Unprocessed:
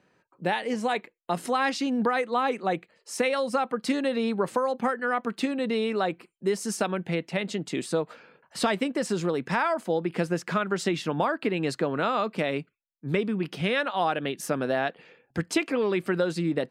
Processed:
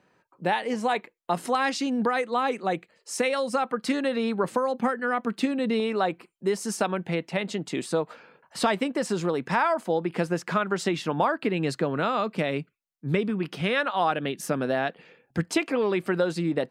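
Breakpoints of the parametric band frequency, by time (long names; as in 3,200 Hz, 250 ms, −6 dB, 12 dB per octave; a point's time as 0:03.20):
parametric band +3.5 dB 0.98 octaves
940 Hz
from 0:01.55 7,400 Hz
from 0:03.62 1,400 Hz
from 0:04.44 210 Hz
from 0:05.80 910 Hz
from 0:11.38 150 Hz
from 0:13.30 1,200 Hz
from 0:14.11 180 Hz
from 0:15.45 800 Hz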